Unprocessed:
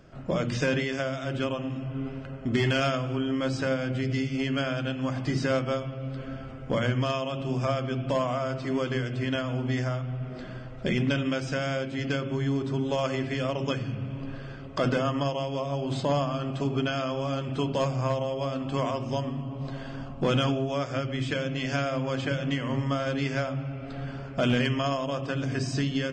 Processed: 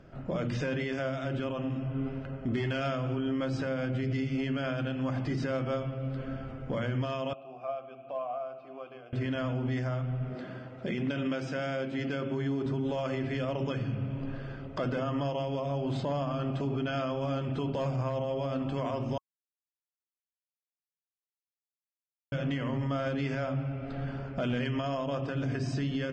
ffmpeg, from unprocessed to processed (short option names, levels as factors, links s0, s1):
-filter_complex "[0:a]asettb=1/sr,asplit=3[s0][s1][s2];[s0]atrim=end=7.334[s3];[s1]atrim=start=7.33:end=9.13,asetpts=PTS-STARTPTS,afade=t=in:d=0.004:c=qsin,afade=t=out:st=1.796:d=0.004:c=qsin,asplit=3[s4][s5][s6];[s4]bandpass=f=730:t=q:w=8,volume=1[s7];[s5]bandpass=f=1090:t=q:w=8,volume=0.501[s8];[s6]bandpass=f=2440:t=q:w=8,volume=0.355[s9];[s7][s8][s9]amix=inputs=3:normalize=0[s10];[s2]atrim=start=9.126[s11];[s3][s10]acrossfade=d=0.004:c1=hsin:c2=qsin[s12];[s12][s11]acrossfade=d=0.004:c1=qsin:c2=hsin,asettb=1/sr,asplit=3[s13][s14][s15];[s13]atrim=end=10.354[s16];[s14]atrim=start=10.35:end=12.66,asetpts=PTS-STARTPTS,afade=t=in:d=0.004:c=qsin,afade=t=out:st=2.306:d=0.004:c=qsin,highpass=150[s17];[s15]atrim=start=12.656[s18];[s16][s17]acrossfade=d=0.004:c1=hsin:c2=qsin[s19];[s19][s18]acrossfade=d=0.004:c1=qsin:c2=hsin,asplit=3[s20][s21][s22];[s20]atrim=end=19.18,asetpts=PTS-STARTPTS,afade=t=out:st=19.176:d=0.004:c=hsin[s23];[s21]atrim=start=19.18:end=22.32,asetpts=PTS-STARTPTS,volume=0[s24];[s22]atrim=start=22.32,asetpts=PTS-STARTPTS,afade=t=in:d=0.004:c=hsin[s25];[s23][s24][s25]concat=n=3:v=0:a=1,lowpass=f=2400:p=1,bandreject=f=1100:w=23,alimiter=limit=0.0631:level=0:latency=1:release=40"